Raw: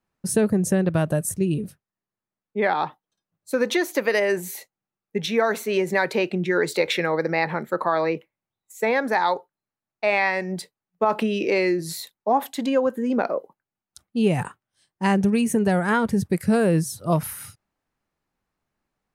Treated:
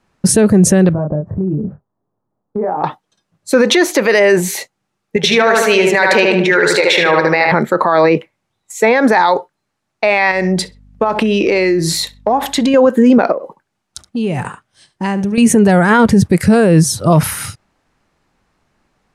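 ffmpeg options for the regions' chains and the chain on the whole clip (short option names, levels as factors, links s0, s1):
-filter_complex "[0:a]asettb=1/sr,asplit=3[s0][s1][s2];[s0]atrim=end=0.934[s3];[s1]atrim=start=0.93:end=2.84,asetpts=PTS-STARTPTS,afade=t=in:d=0.004:c=qsin,afade=t=out:st=1.906:d=0.004:c=qsin,lowpass=f=1000:w=0.5412,lowpass=f=1000:w=1.3066,asplit=2[s4][s5];[s5]adelay=27,volume=0.631[s6];[s4][s6]amix=inputs=2:normalize=0,atrim=end_sample=84231,acompressor=threshold=0.02:ratio=5:attack=3.2:release=140:knee=1:detection=peak[s7];[s2]atrim=start=2.836[s8];[s3][s7]acrossfade=d=0.004:c1=hsin:c2=qsin[s9];[s9][s8]acrossfade=d=0.004:c1=qsin:c2=hsin,asettb=1/sr,asplit=3[s10][s11][s12];[s10]atrim=end=5.164[s13];[s11]atrim=start=5.16:end=7.52,asetpts=PTS-STARTPTS,afade=t=in:d=0.004:c=qsin,afade=t=out:st=2.356:d=0.004:c=qsin,lowshelf=f=430:g=-12,asplit=2[s14][s15];[s15]adelay=75,lowpass=f=3000:p=1,volume=0.668,asplit=2[s16][s17];[s17]adelay=75,lowpass=f=3000:p=1,volume=0.51,asplit=2[s18][s19];[s19]adelay=75,lowpass=f=3000:p=1,volume=0.51,asplit=2[s20][s21];[s21]adelay=75,lowpass=f=3000:p=1,volume=0.51,asplit=2[s22][s23];[s23]adelay=75,lowpass=f=3000:p=1,volume=0.51,asplit=2[s24][s25];[s25]adelay=75,lowpass=f=3000:p=1,volume=0.51,asplit=2[s26][s27];[s27]adelay=75,lowpass=f=3000:p=1,volume=0.51[s28];[s14][s16][s18][s20][s22][s24][s26][s28]amix=inputs=8:normalize=0,atrim=end_sample=104076[s29];[s12]atrim=start=7.516[s30];[s13][s29]acrossfade=d=0.004:c1=hsin:c2=qsin[s31];[s31][s30]acrossfade=d=0.004:c1=qsin:c2=hsin,asettb=1/sr,asplit=3[s32][s33][s34];[s32]atrim=end=10.314[s35];[s33]atrim=start=10.31:end=12.74,asetpts=PTS-STARTPTS,afade=t=in:d=0.004:c=qsin,afade=t=out:st=2.426:d=0.004:c=qsin,asplit=2[s36][s37];[s37]adelay=64,lowpass=f=3900:p=1,volume=0.106,asplit=2[s38][s39];[s39]adelay=64,lowpass=f=3900:p=1,volume=0.26[s40];[s36][s38][s40]amix=inputs=3:normalize=0,atrim=end_sample=107163,acompressor=threshold=0.0398:ratio=6:attack=3.2:release=140:knee=1:detection=peak,aeval=exprs='val(0)+0.000891*(sin(2*PI*50*n/s)+sin(2*PI*2*50*n/s)/2+sin(2*PI*3*50*n/s)/3+sin(2*PI*4*50*n/s)/4+sin(2*PI*5*50*n/s)/5)':c=same[s41];[s34]atrim=start=12.736[s42];[s35][s41]acrossfade=d=0.004:c1=hsin:c2=qsin[s43];[s43][s42]acrossfade=d=0.004:c1=qsin:c2=hsin,asettb=1/sr,asplit=3[s44][s45][s46];[s44]atrim=end=13.324[s47];[s45]atrim=start=13.32:end=15.38,asetpts=PTS-STARTPTS,afade=t=in:d=0.004:c=qsin,afade=t=out:st=2.056:d=0.004:c=qsin,aecho=1:1:72:0.15,atrim=end_sample=90846,acompressor=threshold=0.0126:ratio=3:attack=3.2:release=140:knee=1:detection=peak[s48];[s46]atrim=start=15.376[s49];[s47][s48]acrossfade=d=0.004:c1=hsin:c2=qsin[s50];[s50][s49]acrossfade=d=0.004:c1=qsin:c2=hsin,lowpass=8400,alimiter=level_in=8.91:limit=0.891:release=50:level=0:latency=1,volume=0.891"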